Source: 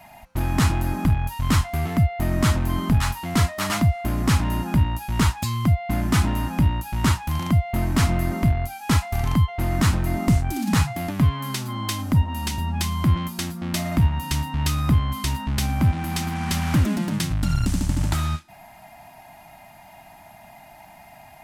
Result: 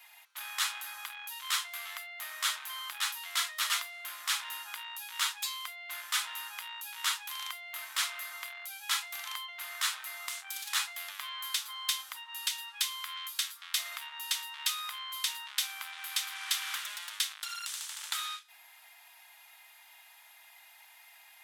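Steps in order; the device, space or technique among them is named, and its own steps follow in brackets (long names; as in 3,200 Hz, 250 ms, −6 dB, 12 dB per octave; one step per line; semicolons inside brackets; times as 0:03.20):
0:12.16–0:13.77: high-pass filter 900 Hz 24 dB per octave
headphones lying on a table (high-pass filter 1,200 Hz 24 dB per octave; parametric band 3,500 Hz +8 dB 0.43 octaves)
high-shelf EQ 6,200 Hz +5.5 dB
level −6 dB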